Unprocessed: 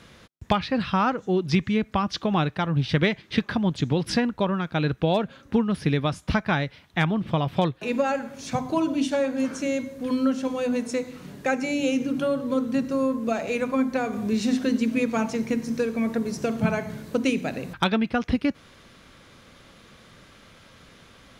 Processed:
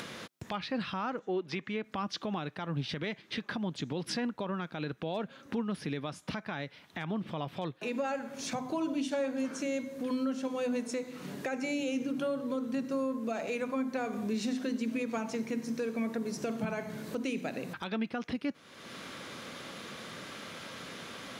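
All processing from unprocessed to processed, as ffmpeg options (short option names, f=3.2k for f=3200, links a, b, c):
-filter_complex "[0:a]asettb=1/sr,asplit=3[a][b][c];[a]atrim=end=1.194[d];[b]atrim=start=1.19:end=1.84,asetpts=PTS-STARTPTS,afade=t=in:d=0.004:c=qsin,afade=t=out:st=0.646:d=0.004:c=qsin,highpass=58,bass=f=250:g=-11,treble=f=4k:g=-11[e];[c]atrim=start=1.836[f];[d][e]acrossfade=d=0.004:c1=hsin:c2=qsin[g];[g][f]acrossfade=d=0.004:c1=qsin:c2=hsin,highpass=180,acompressor=mode=upward:threshold=-24dB:ratio=2.5,alimiter=limit=-18dB:level=0:latency=1:release=66,volume=-6.5dB"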